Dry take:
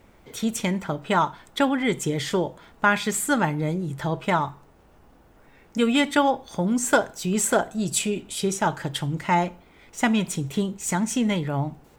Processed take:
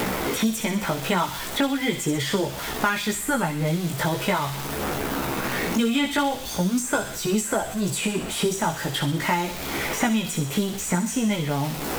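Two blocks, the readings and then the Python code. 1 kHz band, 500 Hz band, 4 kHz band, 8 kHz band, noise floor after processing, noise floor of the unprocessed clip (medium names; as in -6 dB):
-1.5 dB, -1.0 dB, +3.5 dB, +0.5 dB, -32 dBFS, -55 dBFS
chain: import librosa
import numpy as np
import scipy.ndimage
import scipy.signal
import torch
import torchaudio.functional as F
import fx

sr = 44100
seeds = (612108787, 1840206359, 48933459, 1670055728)

p1 = x + 0.5 * 10.0 ** (-30.0 / 20.0) * np.sign(x)
p2 = fx.peak_eq(p1, sr, hz=13000.0, db=5.0, octaves=0.28)
p3 = fx.chorus_voices(p2, sr, voices=2, hz=0.41, base_ms=16, depth_ms=2.3, mix_pct=45)
p4 = p3 + fx.echo_wet_highpass(p3, sr, ms=61, feedback_pct=54, hz=2800.0, wet_db=-5.0, dry=0)
y = fx.band_squash(p4, sr, depth_pct=100)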